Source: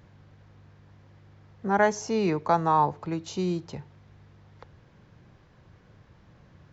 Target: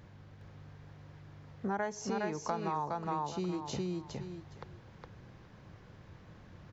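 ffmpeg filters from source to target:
ffmpeg -i in.wav -af "aecho=1:1:413|826|1239:0.708|0.127|0.0229,acompressor=threshold=-33dB:ratio=5" out.wav

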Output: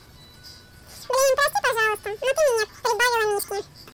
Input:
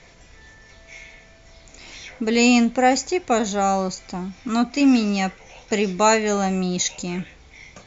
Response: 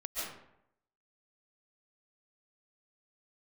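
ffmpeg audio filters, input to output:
-af "asetrate=49501,aresample=44100,atempo=0.890899,highshelf=frequency=5800:gain=-7.5,aresample=16000,asoftclip=type=hard:threshold=-15.5dB,aresample=44100,aeval=exprs='val(0)+0.00141*(sin(2*PI*60*n/s)+sin(2*PI*2*60*n/s)/2+sin(2*PI*3*60*n/s)/3+sin(2*PI*4*60*n/s)/4+sin(2*PI*5*60*n/s)/5)':channel_layout=same,asetrate=88200,aresample=44100"

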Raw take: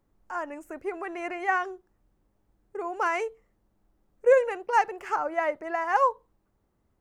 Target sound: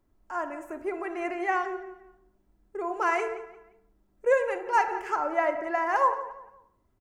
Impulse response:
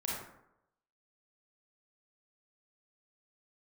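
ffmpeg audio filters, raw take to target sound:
-filter_complex "[0:a]aecho=1:1:3:0.37,asplit=2[link_01][link_02];[link_02]adelay=175,lowpass=frequency=4900:poles=1,volume=-15dB,asplit=2[link_03][link_04];[link_04]adelay=175,lowpass=frequency=4900:poles=1,volume=0.33,asplit=2[link_05][link_06];[link_06]adelay=175,lowpass=frequency=4900:poles=1,volume=0.33[link_07];[link_01][link_03][link_05][link_07]amix=inputs=4:normalize=0,asplit=2[link_08][link_09];[1:a]atrim=start_sample=2205,afade=type=out:start_time=0.33:duration=0.01,atrim=end_sample=14994,lowshelf=frequency=430:gain=5.5[link_10];[link_09][link_10]afir=irnorm=-1:irlink=0,volume=-10.5dB[link_11];[link_08][link_11]amix=inputs=2:normalize=0,volume=-3dB"

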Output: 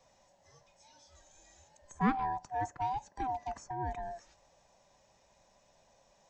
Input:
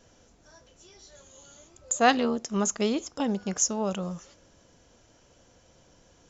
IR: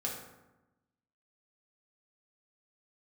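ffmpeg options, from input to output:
-filter_complex "[0:a]afftfilt=real='real(if(lt(b,1008),b+24*(1-2*mod(floor(b/24),2)),b),0)':imag='imag(if(lt(b,1008),b+24*(1-2*mod(floor(b/24),2)),b),0)':win_size=2048:overlap=0.75,acrossover=split=190|1800[link_01][link_02][link_03];[link_03]acompressor=threshold=-52dB:ratio=4[link_04];[link_01][link_02][link_04]amix=inputs=3:normalize=0,volume=-7.5dB"

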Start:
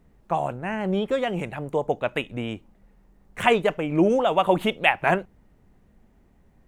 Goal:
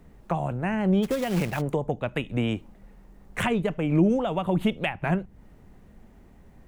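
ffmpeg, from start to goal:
ffmpeg -i in.wav -filter_complex "[0:a]acrossover=split=230[link_01][link_02];[link_02]acompressor=threshold=-33dB:ratio=8[link_03];[link_01][link_03]amix=inputs=2:normalize=0,asplit=3[link_04][link_05][link_06];[link_04]afade=type=out:start_time=1.02:duration=0.02[link_07];[link_05]acrusher=bits=3:mode=log:mix=0:aa=0.000001,afade=type=in:start_time=1.02:duration=0.02,afade=type=out:start_time=1.6:duration=0.02[link_08];[link_06]afade=type=in:start_time=1.6:duration=0.02[link_09];[link_07][link_08][link_09]amix=inputs=3:normalize=0,volume=6.5dB" out.wav

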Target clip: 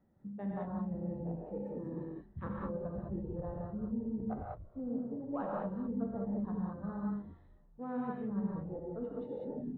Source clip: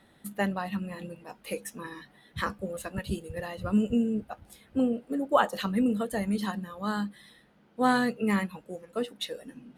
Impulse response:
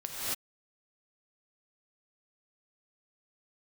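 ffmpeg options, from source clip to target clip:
-filter_complex "[0:a]lowpass=1100,afwtdn=0.01,lowshelf=frequency=380:gain=10,areverse,acompressor=threshold=-41dB:ratio=6,areverse,asplit=4[link_01][link_02][link_03][link_04];[link_02]adelay=240,afreqshift=-120,volume=-20.5dB[link_05];[link_03]adelay=480,afreqshift=-240,volume=-29.1dB[link_06];[link_04]adelay=720,afreqshift=-360,volume=-37.8dB[link_07];[link_01][link_05][link_06][link_07]amix=inputs=4:normalize=0[link_08];[1:a]atrim=start_sample=2205,afade=type=out:start_time=0.26:duration=0.01,atrim=end_sample=11907[link_09];[link_08][link_09]afir=irnorm=-1:irlink=0,volume=3dB"

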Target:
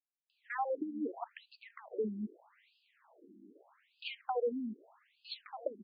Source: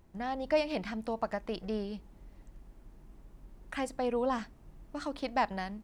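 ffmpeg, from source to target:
ffmpeg -i in.wav -filter_complex "[0:a]acrossover=split=170[link_01][link_02];[link_02]adelay=300[link_03];[link_01][link_03]amix=inputs=2:normalize=0,acompressor=threshold=-36dB:ratio=5,afftfilt=real='re*between(b*sr/1024,250*pow(3600/250,0.5+0.5*sin(2*PI*0.81*pts/sr))/1.41,250*pow(3600/250,0.5+0.5*sin(2*PI*0.81*pts/sr))*1.41)':imag='im*between(b*sr/1024,250*pow(3600/250,0.5+0.5*sin(2*PI*0.81*pts/sr))/1.41,250*pow(3600/250,0.5+0.5*sin(2*PI*0.81*pts/sr))*1.41)':win_size=1024:overlap=0.75,volume=8.5dB" out.wav

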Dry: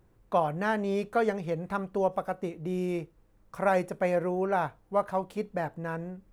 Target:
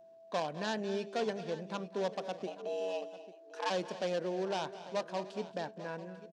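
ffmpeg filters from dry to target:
ffmpeg -i in.wav -filter_complex "[0:a]aeval=exprs='if(lt(val(0),0),0.708*val(0),val(0))':channel_layout=same,highshelf=frequency=4400:gain=-11,aeval=exprs='clip(val(0),-1,0.0596)':channel_layout=same,asplit=3[link_01][link_02][link_03];[link_01]afade=type=out:start_time=2.46:duration=0.02[link_04];[link_02]afreqshift=290,afade=type=in:start_time=2.46:duration=0.02,afade=type=out:start_time=3.69:duration=0.02[link_05];[link_03]afade=type=in:start_time=3.69:duration=0.02[link_06];[link_04][link_05][link_06]amix=inputs=3:normalize=0,highpass=frequency=180:width=0.5412,highpass=frequency=180:width=1.3066,equalizer=frequency=790:width_type=q:width=4:gain=-3,equalizer=frequency=1300:width_type=q:width=4:gain=-9,equalizer=frequency=2100:width_type=q:width=4:gain=-8,lowpass=frequency=5600:width=0.5412,lowpass=frequency=5600:width=1.3066,crystalizer=i=1.5:c=0,aeval=exprs='val(0)+0.00282*sin(2*PI*660*n/s)':channel_layout=same,asplit=2[link_07][link_08];[link_08]aecho=0:1:203|226|295|845:0.112|0.168|0.106|0.15[link_09];[link_07][link_09]amix=inputs=2:normalize=0,crystalizer=i=4:c=0,volume=-4.5dB" out.wav

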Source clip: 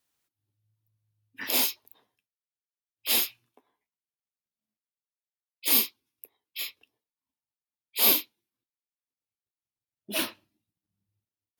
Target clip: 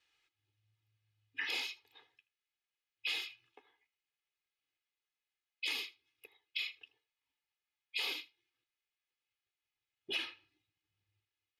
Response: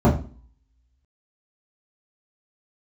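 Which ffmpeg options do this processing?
-af "lowpass=5900,equalizer=frequency=2500:width_type=o:width=1.8:gain=14.5,aecho=1:1:2.4:0.98,acompressor=threshold=-30dB:ratio=8,aecho=1:1:79:0.0794,volume=-6dB"

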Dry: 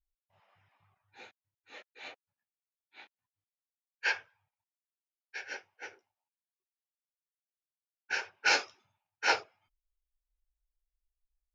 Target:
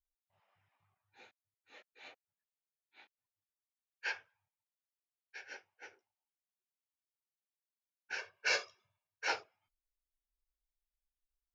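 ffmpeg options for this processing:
ffmpeg -i in.wav -filter_complex "[0:a]asettb=1/sr,asplit=3[link_01][link_02][link_03];[link_01]atrim=end=8.184[link_04];[link_02]atrim=start=8.18:end=9.28,asetpts=PTS-STARTPTS,afade=type=in:duration=0.004:curve=qsin,afade=type=out:start_time=1.096:duration=0.004:curve=qsin,aecho=1:1:1.8:0.87,atrim=end_sample=48510[link_05];[link_03]atrim=start=9.276[link_06];[link_04][link_05]acrossfade=duration=0.004:curve1=hsin:curve2=qsin[link_07];[link_07][link_06]acrossfade=duration=0.004:curve1=qsin:curve2=hsin,volume=-8dB" out.wav

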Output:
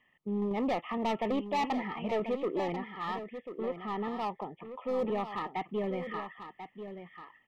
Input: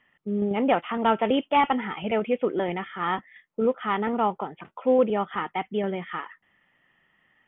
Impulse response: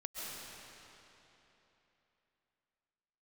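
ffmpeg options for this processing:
-filter_complex "[0:a]acrossover=split=2600[link_01][link_02];[link_02]acompressor=threshold=-54dB:ratio=4:attack=1:release=60[link_03];[link_01][link_03]amix=inputs=2:normalize=0,asoftclip=type=tanh:threshold=-20.5dB,asettb=1/sr,asplit=3[link_04][link_05][link_06];[link_04]atrim=end=2.734[link_07];[link_05]atrim=start=2.73:end=5.05,asetpts=PTS-STARTPTS,afade=type=in:duration=0.004:curve=qsin,afade=type=out:start_time=2.316:duration=0.004:curve=qsin,acrossover=split=860[link_08][link_09];[link_08]aeval=exprs='val(0)*(1-0.5/2+0.5/2*cos(2*PI*1.7*n/s))':channel_layout=same[link_10];[link_09]aeval=exprs='val(0)*(1-0.5/2-0.5/2*cos(2*PI*1.7*n/s))':channel_layout=same[link_11];[link_10][link_11]amix=inputs=2:normalize=0[link_12];[link_06]atrim=start=5.046[link_13];[link_07][link_12]acrossfade=duration=0.004:curve1=hsin:curve2=qsin[link_14];[link_14][link_13]acrossfade=duration=0.004:curve1=qsin:curve2=hsin,asoftclip=type=hard:threshold=-23dB,asuperstop=centerf=1500:order=8:qfactor=3.7,aecho=1:1:1040:0.316,volume=-4dB"

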